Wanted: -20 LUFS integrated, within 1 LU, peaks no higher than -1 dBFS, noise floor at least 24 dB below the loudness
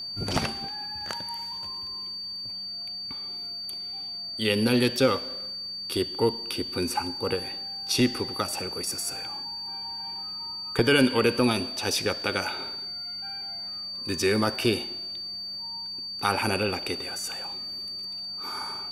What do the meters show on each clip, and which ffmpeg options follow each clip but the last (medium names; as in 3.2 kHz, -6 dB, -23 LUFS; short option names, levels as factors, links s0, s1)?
steady tone 4.6 kHz; tone level -33 dBFS; loudness -28.0 LUFS; peak level -7.0 dBFS; loudness target -20.0 LUFS
-> -af "bandreject=f=4600:w=30"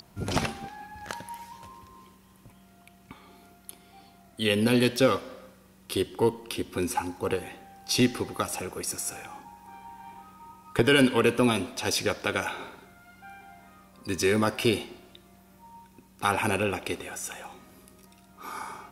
steady tone not found; loudness -27.5 LUFS; peak level -7.5 dBFS; loudness target -20.0 LUFS
-> -af "volume=2.37,alimiter=limit=0.891:level=0:latency=1"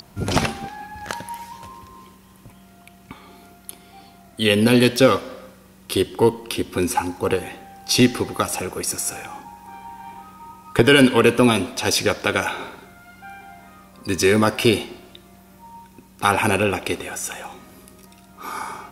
loudness -20.0 LUFS; peak level -1.0 dBFS; noise floor -49 dBFS